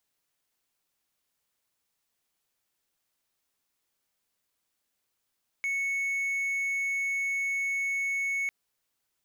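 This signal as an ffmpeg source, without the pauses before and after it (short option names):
-f lavfi -i "aevalsrc='0.0562*(1-4*abs(mod(2210*t+0.25,1)-0.5))':d=2.85:s=44100"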